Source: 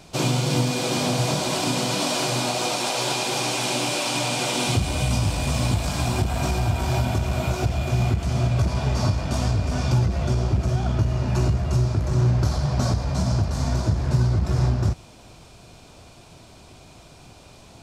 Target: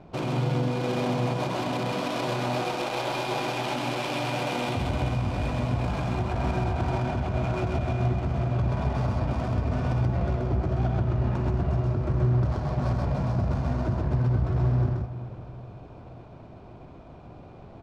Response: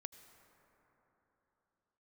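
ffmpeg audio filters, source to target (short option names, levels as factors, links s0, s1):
-filter_complex "[0:a]lowshelf=f=120:g=-4,alimiter=limit=0.0841:level=0:latency=1:release=146,adynamicsmooth=sensitivity=4:basefreq=990,aresample=32000,aresample=44100,asplit=2[s0][s1];[1:a]atrim=start_sample=2205,adelay=130[s2];[s1][s2]afir=irnorm=-1:irlink=0,volume=1.5[s3];[s0][s3]amix=inputs=2:normalize=0,volume=1.26"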